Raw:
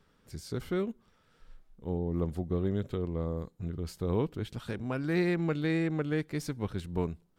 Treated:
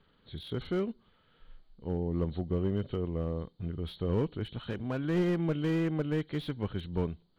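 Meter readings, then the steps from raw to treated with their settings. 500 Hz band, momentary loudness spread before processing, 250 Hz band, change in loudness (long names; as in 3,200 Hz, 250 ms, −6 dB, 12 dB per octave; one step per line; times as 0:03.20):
−0.5 dB, 10 LU, 0.0 dB, 0.0 dB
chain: hearing-aid frequency compression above 2,900 Hz 4 to 1
slew-rate limiting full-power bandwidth 23 Hz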